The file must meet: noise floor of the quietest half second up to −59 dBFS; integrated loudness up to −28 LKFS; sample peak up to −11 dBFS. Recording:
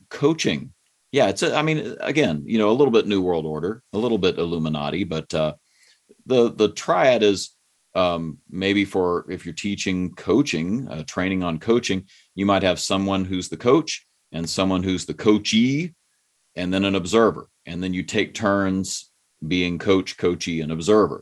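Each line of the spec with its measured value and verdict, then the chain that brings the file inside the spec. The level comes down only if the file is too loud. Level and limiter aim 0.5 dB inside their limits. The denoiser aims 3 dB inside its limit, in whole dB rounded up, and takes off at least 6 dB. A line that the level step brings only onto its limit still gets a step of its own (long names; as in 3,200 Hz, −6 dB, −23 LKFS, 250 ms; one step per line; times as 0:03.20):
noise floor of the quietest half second −68 dBFS: in spec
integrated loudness −22.0 LKFS: out of spec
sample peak −4.0 dBFS: out of spec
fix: level −6.5 dB
brickwall limiter −11.5 dBFS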